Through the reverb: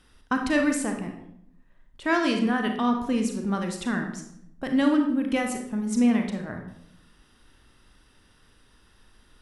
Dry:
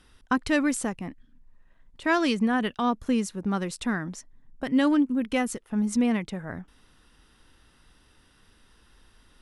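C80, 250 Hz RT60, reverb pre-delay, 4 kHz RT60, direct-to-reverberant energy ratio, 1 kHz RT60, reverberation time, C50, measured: 9.5 dB, 0.95 s, 32 ms, 0.50 s, 3.5 dB, 0.70 s, 0.75 s, 6.5 dB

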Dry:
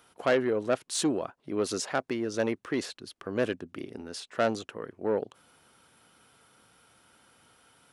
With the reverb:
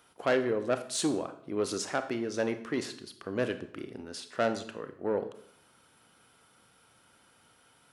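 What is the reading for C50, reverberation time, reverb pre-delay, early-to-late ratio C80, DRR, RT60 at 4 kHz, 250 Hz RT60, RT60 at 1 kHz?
12.0 dB, 0.60 s, 27 ms, 15.5 dB, 9.0 dB, 0.50 s, 0.65 s, 0.60 s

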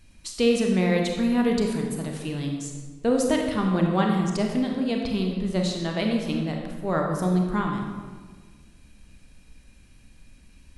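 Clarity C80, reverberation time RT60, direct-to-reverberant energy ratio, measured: 5.0 dB, 1.5 s, 1.0 dB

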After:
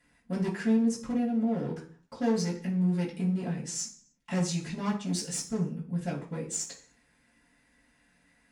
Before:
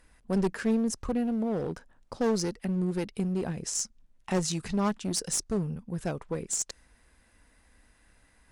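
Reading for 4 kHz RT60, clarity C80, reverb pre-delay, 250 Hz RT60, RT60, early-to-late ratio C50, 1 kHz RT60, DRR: 0.50 s, 14.5 dB, 3 ms, 0.60 s, 0.45 s, 9.5 dB, 0.40 s, -11.0 dB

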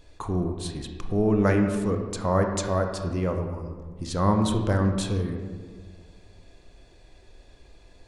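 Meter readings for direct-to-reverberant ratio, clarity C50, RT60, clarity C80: 4.0 dB, 5.5 dB, 1.6 s, 7.0 dB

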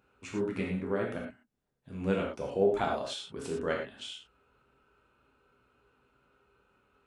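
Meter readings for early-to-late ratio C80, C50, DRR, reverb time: 7.0 dB, 4.0 dB, -2.0 dB, not exponential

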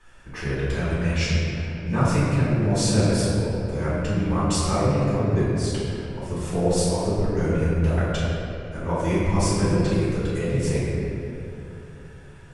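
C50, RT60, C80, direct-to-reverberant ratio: -3.0 dB, 2.9 s, -1.0 dB, -12.0 dB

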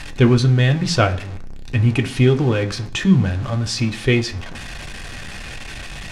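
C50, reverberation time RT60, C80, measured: 16.0 dB, 0.45 s, 20.5 dB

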